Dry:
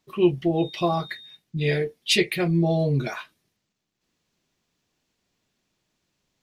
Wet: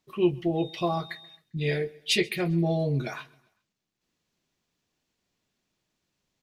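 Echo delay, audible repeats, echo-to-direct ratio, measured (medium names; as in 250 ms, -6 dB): 133 ms, 2, -23.0 dB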